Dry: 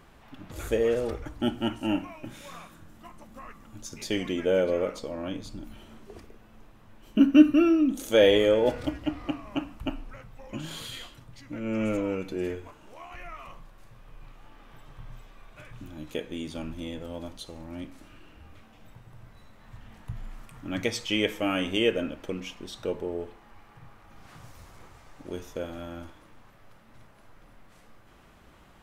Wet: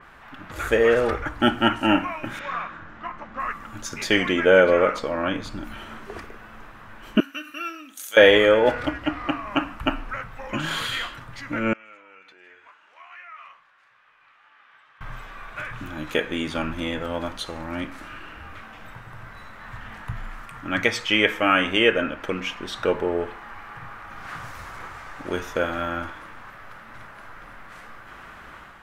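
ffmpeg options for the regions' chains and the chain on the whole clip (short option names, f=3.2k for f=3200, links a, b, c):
-filter_complex "[0:a]asettb=1/sr,asplit=3[a][b][c];[a]atrim=end=2.394[d];[b]atrim=start=2.39:end=3.4,asetpts=PTS-STARTPTS,afade=t=in:d=0.004:c=qsin,afade=t=out:st=1.006:d=0.004:c=qsin,lowpass=f=6.7k:w=0.5412,lowpass=f=6.7k:w=1.3066,bass=f=250:g=-2,treble=f=4k:g=-13[e];[c]atrim=start=3.396[f];[d][e]acrossfade=d=0.004:c1=hsin:c2=qsin[g];[g][f]acrossfade=d=0.004:c1=qsin:c2=hsin,asettb=1/sr,asplit=3[h][i][j];[h]atrim=end=7.204[k];[i]atrim=start=7.2:end=8.17,asetpts=PTS-STARTPTS,afade=t=in:d=0.004:c=qsin,afade=t=out:st=0.966:d=0.004:c=qsin,acompressor=threshold=-18dB:ratio=3:attack=3.2:release=140:knee=1:detection=peak,aderivative[l];[j]atrim=start=8.166[m];[k][l]acrossfade=d=0.004:c1=hsin:c2=qsin[n];[n][m]acrossfade=d=0.004:c1=qsin:c2=hsin,asettb=1/sr,asplit=3[o][p][q];[o]atrim=end=11.734[r];[p]atrim=start=11.73:end=15.01,asetpts=PTS-STARTPTS,afade=t=in:d=0.004:c=qsin,afade=t=out:st=3.276:d=0.004:c=qsin,acompressor=threshold=-39dB:ratio=3:attack=3.2:release=140:knee=1:detection=peak,lowpass=2.6k,aderivative[s];[q]atrim=start=15.006[t];[r][s]acrossfade=d=0.004:c1=hsin:c2=qsin[u];[u][t]acrossfade=d=0.004:c1=qsin:c2=hsin,equalizer=f=1.5k:w=0.79:g=14.5,dynaudnorm=f=510:g=3:m=6dB,adynamicequalizer=threshold=0.0112:dfrequency=4000:dqfactor=0.7:tfrequency=4000:tqfactor=0.7:attack=5:release=100:ratio=0.375:range=2:mode=cutabove:tftype=highshelf"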